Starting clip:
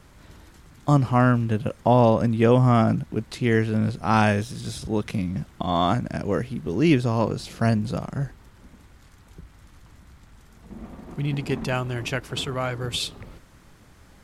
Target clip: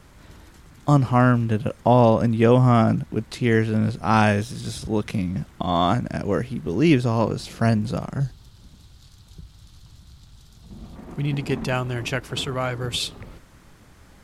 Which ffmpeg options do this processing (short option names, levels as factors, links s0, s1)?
-filter_complex "[0:a]asettb=1/sr,asplit=3[s0][s1][s2];[s0]atrim=end=8.204[s3];[s1]atrim=start=8.2:end=10.96,asetpts=PTS-STARTPTS,afade=t=in:d=0.004:c=qsin,afade=t=out:st=2.756:d=0.004:c=qsin,equalizer=f=125:t=o:w=1:g=5,equalizer=f=250:t=o:w=1:g=-6,equalizer=f=500:t=o:w=1:g=-6,equalizer=f=1000:t=o:w=1:g=-4,equalizer=f=2000:t=o:w=1:g=-11,equalizer=f=4000:t=o:w=1:g=11[s4];[s2]atrim=start=10.956[s5];[s3][s4]acrossfade=d=0.004:c1=hsin:c2=qsin[s6];[s6][s5]acrossfade=d=0.004:c1=qsin:c2=hsin,volume=1.19"